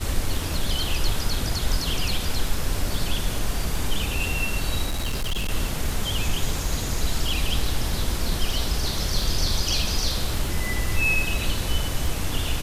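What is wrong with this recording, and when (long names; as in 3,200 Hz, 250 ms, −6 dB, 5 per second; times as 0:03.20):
surface crackle 18 per second −30 dBFS
0:04.86–0:05.51: clipping −21.5 dBFS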